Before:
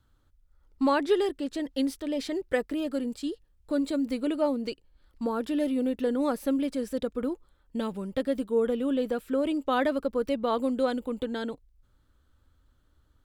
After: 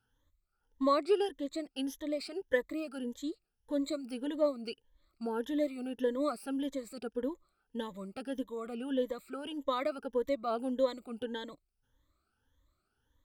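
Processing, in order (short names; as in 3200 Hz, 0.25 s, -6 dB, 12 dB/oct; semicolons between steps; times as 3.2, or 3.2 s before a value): moving spectral ripple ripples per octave 1.1, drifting +1.7 Hz, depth 18 dB; low shelf 250 Hz -7 dB; gain -8.5 dB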